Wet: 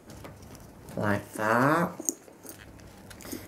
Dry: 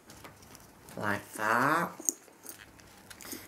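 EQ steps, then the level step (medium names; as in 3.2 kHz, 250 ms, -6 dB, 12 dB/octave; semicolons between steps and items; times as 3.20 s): bass shelf 390 Hz +10.5 dB; peaking EQ 580 Hz +5 dB 0.57 oct; 0.0 dB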